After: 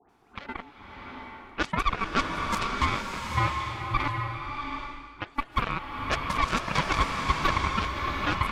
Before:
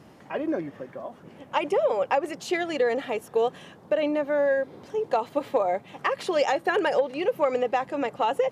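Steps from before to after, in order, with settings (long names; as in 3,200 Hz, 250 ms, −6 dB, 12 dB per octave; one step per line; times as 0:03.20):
0:04.07–0:05.18: guitar amp tone stack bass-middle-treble 10-0-1
all-pass dispersion highs, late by 92 ms, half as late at 1,100 Hz
ring modulation 570 Hz
harmonic generator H 5 −22 dB, 7 −12 dB, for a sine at −11.5 dBFS
slow-attack reverb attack 760 ms, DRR 1.5 dB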